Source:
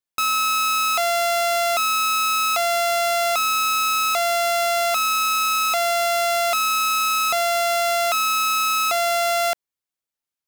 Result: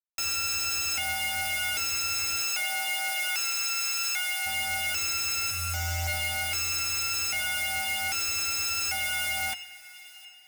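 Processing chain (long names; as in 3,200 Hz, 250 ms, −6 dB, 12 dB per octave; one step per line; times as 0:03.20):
0:05.50–0:06.07: spectral tilt −2.5 dB per octave
brickwall limiter −21 dBFS, peak gain reduction 8 dB
bit reduction 4 bits
convolution reverb RT60 5.4 s, pre-delay 41 ms, DRR 13.5 dB
flanger 1.2 Hz, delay 4.9 ms, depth 1.4 ms, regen +38%
parametric band 5,100 Hz +8 dB 0.4 octaves
phaser with its sweep stopped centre 1,100 Hz, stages 6
frequency shifter +85 Hz
hard clipping −32 dBFS, distortion −7 dB
0:02.41–0:04.45: high-pass filter 300 Hz → 1,000 Hz 12 dB per octave
delay with a high-pass on its return 714 ms, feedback 34%, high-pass 1,700 Hz, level −19 dB
level +5.5 dB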